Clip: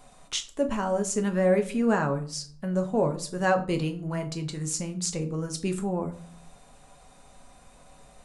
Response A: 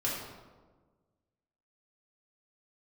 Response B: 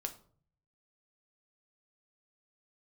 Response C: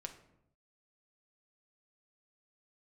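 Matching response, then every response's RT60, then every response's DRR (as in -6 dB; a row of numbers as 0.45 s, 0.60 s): B; 1.4 s, 0.50 s, 0.80 s; -6.5 dB, 5.0 dB, 4.0 dB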